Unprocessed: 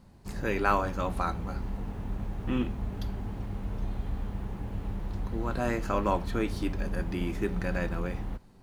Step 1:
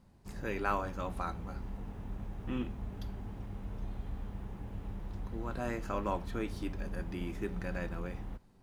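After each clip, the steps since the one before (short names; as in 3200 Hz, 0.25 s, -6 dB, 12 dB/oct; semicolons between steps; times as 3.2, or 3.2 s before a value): notch 4300 Hz, Q 20; gain -7 dB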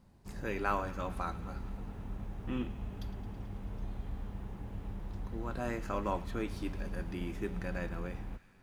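thin delay 0.109 s, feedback 79%, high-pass 1600 Hz, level -15.5 dB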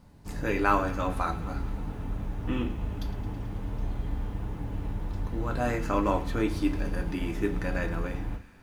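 FDN reverb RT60 0.33 s, low-frequency decay 1.3×, high-frequency decay 0.8×, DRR 5.5 dB; gain +7 dB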